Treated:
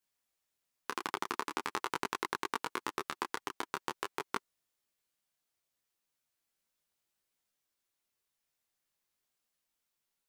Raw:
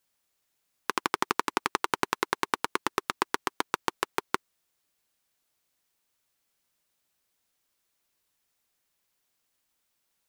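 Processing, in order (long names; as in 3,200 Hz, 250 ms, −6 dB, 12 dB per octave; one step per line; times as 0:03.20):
micro pitch shift up and down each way 15 cents
level −4 dB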